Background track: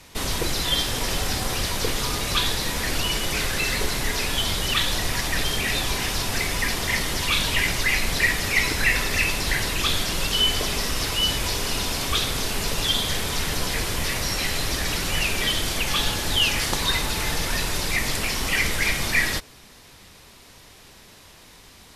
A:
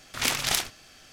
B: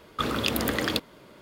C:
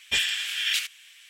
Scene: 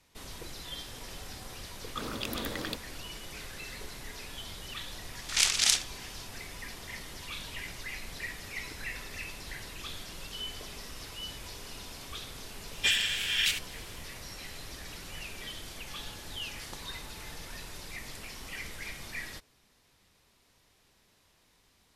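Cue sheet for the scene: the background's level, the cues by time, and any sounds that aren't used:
background track -18.5 dB
1.77 add B -10 dB
5.15 add A -8.5 dB + weighting filter ITU-R 468
12.72 add C -2 dB

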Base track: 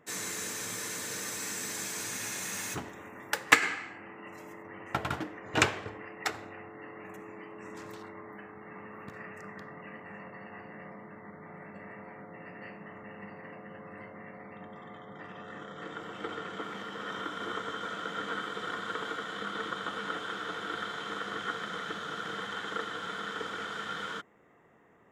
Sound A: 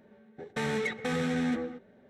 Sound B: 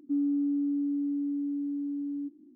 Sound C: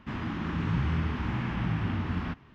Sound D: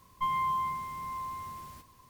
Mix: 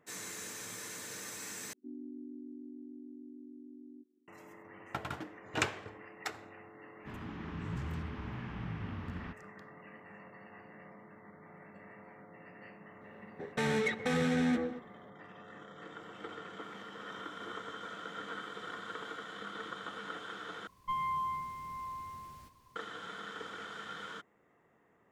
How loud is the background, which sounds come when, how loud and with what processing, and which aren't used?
base track -7 dB
1.73 replace with B -17.5 dB + chord vocoder minor triad, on B3
6.99 add C -11 dB, fades 0.10 s
13.01 add A -0.5 dB
20.67 replace with D -4.5 dB + high shelf 8500 Hz -6.5 dB

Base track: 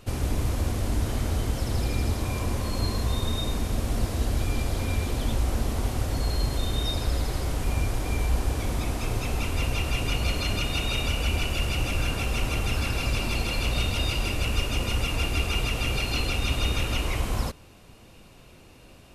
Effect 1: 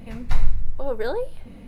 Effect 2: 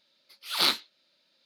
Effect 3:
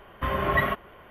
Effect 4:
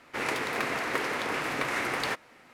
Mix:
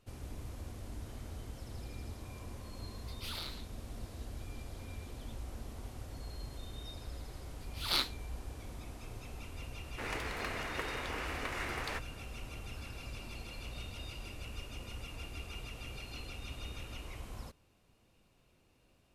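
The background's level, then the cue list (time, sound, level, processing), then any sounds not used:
base track -18.5 dB
2.78 add 2 -1 dB + compressor 8:1, threshold -39 dBFS
7.31 add 2 -8 dB
9.84 add 4 -9.5 dB
not used: 1, 3

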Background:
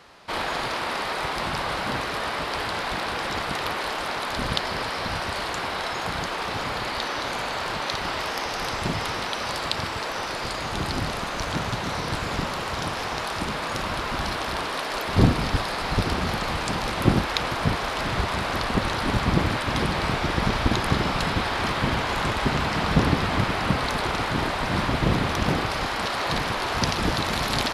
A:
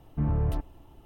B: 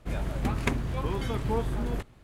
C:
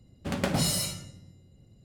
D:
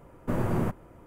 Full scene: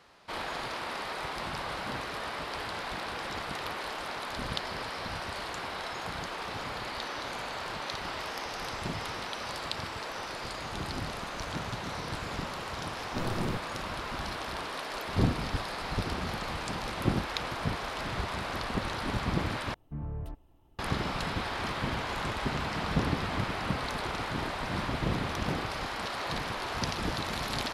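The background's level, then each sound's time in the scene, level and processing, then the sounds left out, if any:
background -8.5 dB
12.87 add D -6 dB
19.74 replace with A -11 dB
not used: B, C

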